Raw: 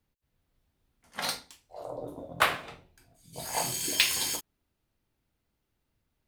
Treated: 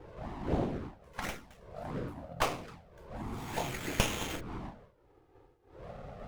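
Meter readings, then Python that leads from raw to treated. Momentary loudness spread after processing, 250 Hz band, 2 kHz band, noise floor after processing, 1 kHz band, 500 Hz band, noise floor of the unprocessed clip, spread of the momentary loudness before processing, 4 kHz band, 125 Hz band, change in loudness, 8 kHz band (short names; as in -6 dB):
17 LU, +7.5 dB, -7.5 dB, -65 dBFS, -3.5 dB, +1.5 dB, -80 dBFS, 20 LU, -10.5 dB, +9.0 dB, -8.0 dB, -11.5 dB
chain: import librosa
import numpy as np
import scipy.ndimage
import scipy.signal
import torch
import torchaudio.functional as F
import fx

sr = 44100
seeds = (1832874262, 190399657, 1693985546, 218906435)

y = fx.dmg_wind(x, sr, seeds[0], corner_hz=560.0, level_db=-40.0)
y = fx.env_flanger(y, sr, rest_ms=2.6, full_db=-26.5)
y = fx.running_max(y, sr, window=9)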